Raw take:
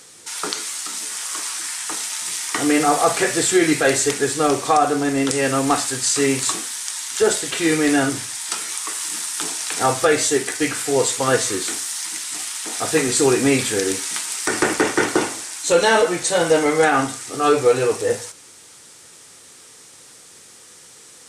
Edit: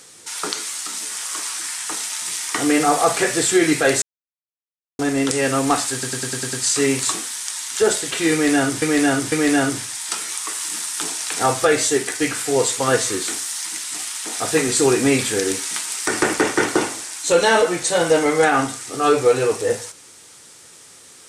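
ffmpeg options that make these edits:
-filter_complex "[0:a]asplit=11[a][b][c][d][e][f][g][h][i][j][k];[a]atrim=end=4.02,asetpts=PTS-STARTPTS,afade=t=out:st=4.016:d=0.004:c=hsin[l];[b]atrim=start=4.02:end=4.99,asetpts=PTS-STARTPTS,volume=0[m];[c]atrim=start=4.99:end=6.032,asetpts=PTS-STARTPTS,afade=t=in:d=0.004:c=hsin[n];[d]atrim=start=5.928:end=6.032[o];[e]atrim=start=5.928:end=6.032[p];[f]atrim=start=5.928:end=6.032[q];[g]atrim=start=5.928:end=6.032[r];[h]atrim=start=5.928:end=6.032[s];[i]atrim=start=5.928:end=8.222[t];[j]atrim=start=7.718:end=8.222[u];[k]atrim=start=7.718[v];[l][m][n]concat=n=3:v=0:a=1[w];[w][o]acrossfade=d=0.004:c1=hsin:c2=hsin[x];[x][p]acrossfade=d=0.004:c1=hsin:c2=hsin[y];[y][q]acrossfade=d=0.004:c1=hsin:c2=hsin[z];[z][r]acrossfade=d=0.004:c1=hsin:c2=hsin[aa];[aa][s]acrossfade=d=0.004:c1=hsin:c2=hsin[ab];[ab][t]acrossfade=d=0.004:c1=hsin:c2=hsin[ac];[ac][u]acrossfade=d=0.004:c1=hsin:c2=hsin[ad];[ad][v]acrossfade=d=0.004:c1=hsin:c2=hsin"

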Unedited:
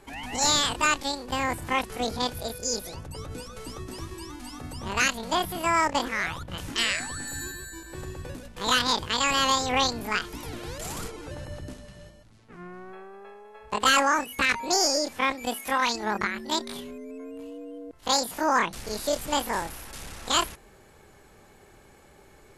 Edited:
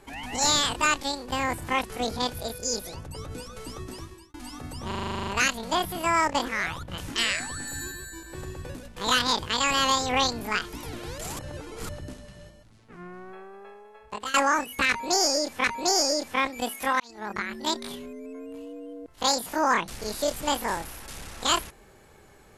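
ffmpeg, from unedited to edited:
-filter_complex "[0:a]asplit=17[a][b][c][d][e][f][g][h][i][j][k][l][m][n][o][p][q];[a]atrim=end=4.34,asetpts=PTS-STARTPTS,afade=t=out:st=3.89:d=0.45[r];[b]atrim=start=4.34:end=4.912,asetpts=PTS-STARTPTS,afade=t=in:d=0.004:c=hsin[s];[c]atrim=start=4.868:end=4.912[t];[d]atrim=start=4.868:end=4.912[u];[e]atrim=start=4.868:end=4.912[v];[f]atrim=start=4.868:end=4.912[w];[g]atrim=start=4.868:end=4.912[x];[h]atrim=start=4.868:end=4.912[y];[i]atrim=start=4.868:end=4.912[z];[j]atrim=start=4.868:end=4.912[aa];[k]atrim=start=4.868:end=4.912[ab];[l]atrim=start=4.868:end=10.992[ac];[m]atrim=start=10.988:end=11.492,asetpts=PTS-STARTPTS,areverse[ad];[n]atrim=start=11.488:end=13.94,asetpts=PTS-STARTPTS,afade=t=out:st=1.692:d=0.76:c=qsin:silence=0.105925[ae];[o]atrim=start=13.94:end=15.242,asetpts=PTS-STARTPTS,afade=t=in:d=0.004:c=hsin:silence=0.105925[af];[p]atrim=start=14.488:end=15.85,asetpts=PTS-STARTPTS,afade=t=out:st=1.358:d=0.004:c=hsin[ag];[q]atrim=start=15.85,asetpts=PTS-STARTPTS,afade=t=in:d=0.58[ah];[r][s]concat=n=2:v=0:a=1[ai];[ai][t]acrossfade=d=0.004:c1=hsin:c2=hsin[aj];[aj][u]acrossfade=d=0.004:c1=hsin:c2=hsin[ak];[ak][v]acrossfade=d=0.004:c1=hsin:c2=hsin[al];[al][w]acrossfade=d=0.004:c1=hsin:c2=hsin[am];[am][x]acrossfade=d=0.004:c1=hsin:c2=hsin[an];[an][y]acrossfade=d=0.004:c1=hsin:c2=hsin[ao];[ao][z]acrossfade=d=0.004:c1=hsin:c2=hsin[ap];[ap][aa]acrossfade=d=0.004:c1=hsin:c2=hsin[aq];[aq][ab]acrossfade=d=0.004:c1=hsin:c2=hsin[ar];[ar][ac]acrossfade=d=0.004:c1=hsin:c2=hsin[as];[as][ad]acrossfade=d=0.004:c1=hsin:c2=hsin[at];[ae][af]concat=n=2:v=0:a=1[au];[at][au]acrossfade=d=0.004:c1=hsin:c2=hsin[av];[ag][ah]concat=n=2:v=0:a=1[aw];[av][aw]acrossfade=d=0.004:c1=hsin:c2=hsin"

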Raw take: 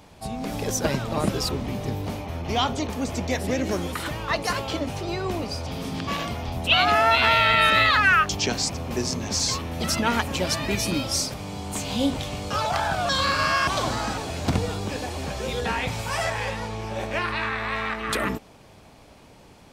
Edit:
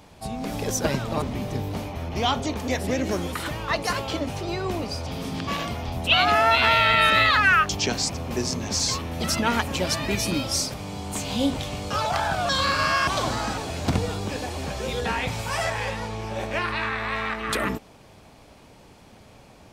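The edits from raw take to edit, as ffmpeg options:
-filter_complex "[0:a]asplit=3[a][b][c];[a]atrim=end=1.222[d];[b]atrim=start=1.548:end=3.012[e];[c]atrim=start=3.278[f];[d][e]acrossfade=d=0.004:c1=hsin:c2=hsin[g];[g][f]acrossfade=d=0.004:c1=hsin:c2=hsin"

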